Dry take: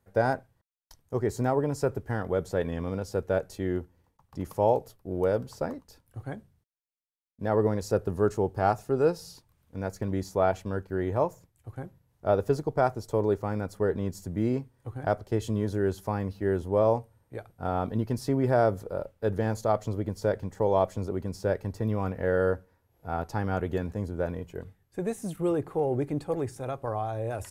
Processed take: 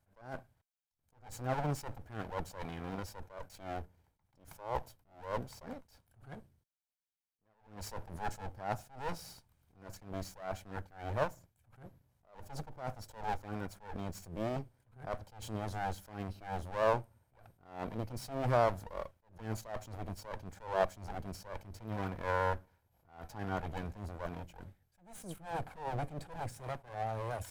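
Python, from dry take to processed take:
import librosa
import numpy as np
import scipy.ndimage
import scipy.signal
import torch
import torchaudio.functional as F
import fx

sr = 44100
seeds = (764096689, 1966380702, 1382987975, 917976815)

y = fx.lower_of_two(x, sr, delay_ms=1.3)
y = fx.attack_slew(y, sr, db_per_s=130.0)
y = F.gain(torch.from_numpy(y), -3.0).numpy()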